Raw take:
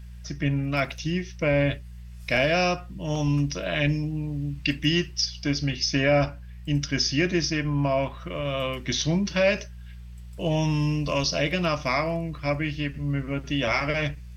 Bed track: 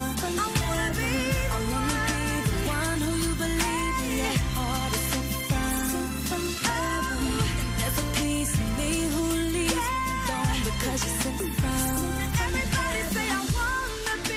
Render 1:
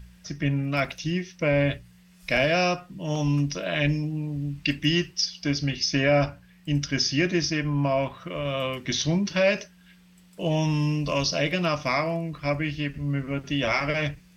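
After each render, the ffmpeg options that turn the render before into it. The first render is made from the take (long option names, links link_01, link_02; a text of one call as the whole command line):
ffmpeg -i in.wav -af "bandreject=frequency=60:width_type=h:width=4,bandreject=frequency=120:width_type=h:width=4" out.wav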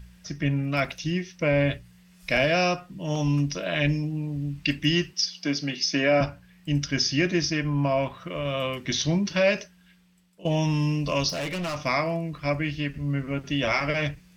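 ffmpeg -i in.wav -filter_complex "[0:a]asettb=1/sr,asplit=3[link_01][link_02][link_03];[link_01]atrim=end=5.134[link_04];[link_02]atrim=start=5.13:end=6.21,asetpts=PTS-STARTPTS,afade=type=in:duration=0.004:curve=qsin,afade=type=out:start_time=1.076:duration=0.004:curve=qsin,highpass=frequency=170:width=0.5412,highpass=frequency=170:width=1.3066[link_05];[link_03]atrim=start=6.206[link_06];[link_04][link_05]acrossfade=duration=0.004:curve1=hsin:curve2=qsin[link_07];[link_07][link_06]acrossfade=duration=0.004:curve1=qsin:curve2=hsin,asettb=1/sr,asplit=3[link_08][link_09][link_10];[link_08]atrim=end=11.294[link_11];[link_09]atrim=start=11.29:end=11.81,asetpts=PTS-STARTPTS,afade=type=in:duration=0.004:curve=qsin,afade=type=out:start_time=0.516:duration=0.004:curve=qsin,asoftclip=type=hard:threshold=-27.5dB[link_12];[link_10]atrim=start=11.806[link_13];[link_11][link_12]acrossfade=duration=0.004:curve1=hsin:curve2=qsin[link_14];[link_14][link_13]acrossfade=duration=0.004:curve1=qsin:curve2=hsin,asplit=2[link_15][link_16];[link_15]atrim=end=10.45,asetpts=PTS-STARTPTS,afade=type=out:start_time=9.52:duration=0.93:silence=0.16788[link_17];[link_16]atrim=start=10.45,asetpts=PTS-STARTPTS,afade=type=in:duration=0.004:curve=hsin:silence=0.16788[link_18];[link_17][link_18]concat=n=2:v=0:a=1" out.wav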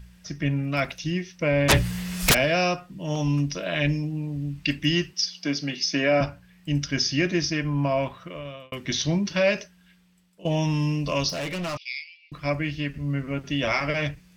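ffmpeg -i in.wav -filter_complex "[0:a]asplit=3[link_01][link_02][link_03];[link_01]afade=type=out:start_time=1.68:duration=0.02[link_04];[link_02]aeval=exprs='0.237*sin(PI/2*10*val(0)/0.237)':channel_layout=same,afade=type=in:start_time=1.68:duration=0.02,afade=type=out:start_time=2.33:duration=0.02[link_05];[link_03]afade=type=in:start_time=2.33:duration=0.02[link_06];[link_04][link_05][link_06]amix=inputs=3:normalize=0,asettb=1/sr,asplit=3[link_07][link_08][link_09];[link_07]atrim=end=11.774[link_10];[link_08]atrim=start=11.77:end=12.32,asetpts=PTS-STARTPTS,afade=type=in:duration=0.004:curve=qsin,afade=type=out:start_time=0.546:duration=0.004:curve=qsin,asuperpass=centerf=3400:order=12:qfactor=1.2[link_11];[link_09]atrim=start=12.316[link_12];[link_10][link_11]acrossfade=duration=0.004:curve1=hsin:curve2=qsin[link_13];[link_13][link_12]acrossfade=duration=0.004:curve1=qsin:curve2=hsin,asplit=2[link_14][link_15];[link_14]atrim=end=8.72,asetpts=PTS-STARTPTS,afade=type=out:start_time=8.08:duration=0.64[link_16];[link_15]atrim=start=8.72,asetpts=PTS-STARTPTS,afade=type=in:duration=0.004:curve=hsin[link_17];[link_16][link_17]concat=n=2:v=0:a=1" out.wav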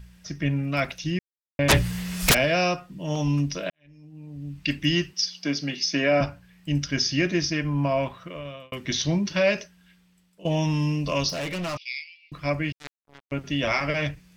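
ffmpeg -i in.wav -filter_complex "[0:a]asettb=1/sr,asplit=3[link_01][link_02][link_03];[link_01]atrim=end=12.724[link_04];[link_02]atrim=start=12.72:end=13.32,asetpts=PTS-STARTPTS,afade=type=in:duration=0.004:curve=qsin,afade=type=out:start_time=0.596:duration=0.004:curve=qsin,acrusher=bits=2:mix=0:aa=0.5[link_05];[link_03]atrim=start=13.316[link_06];[link_04][link_05]acrossfade=duration=0.004:curve1=hsin:curve2=qsin[link_07];[link_07][link_06]acrossfade=duration=0.004:curve1=qsin:curve2=hsin,asplit=4[link_08][link_09][link_10][link_11];[link_08]atrim=end=1.19,asetpts=PTS-STARTPTS,afade=type=out:start_time=1.186:duration=0.004:curve=hsin[link_12];[link_09]atrim=start=1.19:end=1.59,asetpts=PTS-STARTPTS,volume=0[link_13];[link_10]atrim=start=1.59:end=3.7,asetpts=PTS-STARTPTS,afade=type=in:duration=0.004:curve=hsin,afade=type=out:start_time=2.106:duration=0.004:curve=hsin[link_14];[link_11]atrim=start=3.7,asetpts=PTS-STARTPTS,afade=type=in:duration=1.04:curve=qua[link_15];[link_12][link_13][link_14][link_15]concat=n=4:v=0:a=1" out.wav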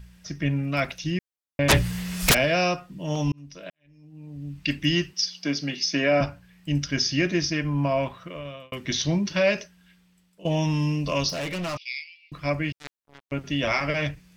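ffmpeg -i in.wav -filter_complex "[0:a]asplit=2[link_01][link_02];[link_01]atrim=end=3.32,asetpts=PTS-STARTPTS,afade=type=out:start_time=3.316:duration=0.004:curve=hsin[link_03];[link_02]atrim=start=3.32,asetpts=PTS-STARTPTS,afade=type=in:duration=0.95[link_04];[link_03][link_04]concat=n=2:v=0:a=1" out.wav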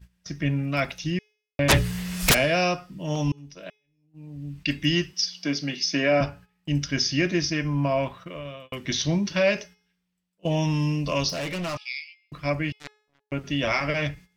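ffmpeg -i in.wav -af "agate=range=-17dB:threshold=-44dB:ratio=16:detection=peak,bandreject=frequency=423.4:width_type=h:width=4,bandreject=frequency=846.8:width_type=h:width=4,bandreject=frequency=1270.2:width_type=h:width=4,bandreject=frequency=1693.6:width_type=h:width=4,bandreject=frequency=2117:width_type=h:width=4,bandreject=frequency=2540.4:width_type=h:width=4,bandreject=frequency=2963.8:width_type=h:width=4,bandreject=frequency=3387.2:width_type=h:width=4,bandreject=frequency=3810.6:width_type=h:width=4,bandreject=frequency=4234:width_type=h:width=4,bandreject=frequency=4657.4:width_type=h:width=4,bandreject=frequency=5080.8:width_type=h:width=4,bandreject=frequency=5504.2:width_type=h:width=4,bandreject=frequency=5927.6:width_type=h:width=4,bandreject=frequency=6351:width_type=h:width=4,bandreject=frequency=6774.4:width_type=h:width=4,bandreject=frequency=7197.8:width_type=h:width=4,bandreject=frequency=7621.2:width_type=h:width=4,bandreject=frequency=8044.6:width_type=h:width=4,bandreject=frequency=8468:width_type=h:width=4,bandreject=frequency=8891.4:width_type=h:width=4,bandreject=frequency=9314.8:width_type=h:width=4,bandreject=frequency=9738.2:width_type=h:width=4,bandreject=frequency=10161.6:width_type=h:width=4,bandreject=frequency=10585:width_type=h:width=4,bandreject=frequency=11008.4:width_type=h:width=4,bandreject=frequency=11431.8:width_type=h:width=4" out.wav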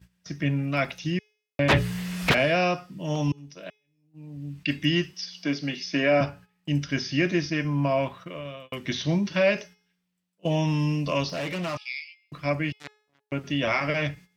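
ffmpeg -i in.wav -filter_complex "[0:a]highpass=92,acrossover=split=3800[link_01][link_02];[link_02]acompressor=threshold=-43dB:ratio=4:attack=1:release=60[link_03];[link_01][link_03]amix=inputs=2:normalize=0" out.wav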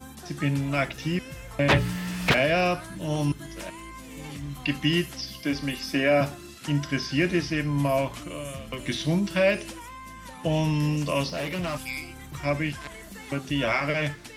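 ffmpeg -i in.wav -i bed.wav -filter_complex "[1:a]volume=-14.5dB[link_01];[0:a][link_01]amix=inputs=2:normalize=0" out.wav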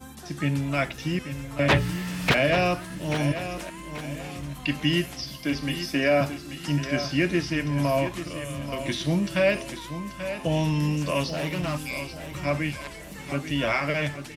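ffmpeg -i in.wav -af "aecho=1:1:835|1670|2505|3340:0.299|0.116|0.0454|0.0177" out.wav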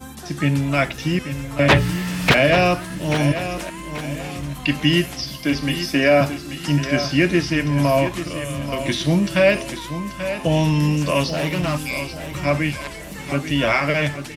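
ffmpeg -i in.wav -af "volume=6.5dB,alimiter=limit=-3dB:level=0:latency=1" out.wav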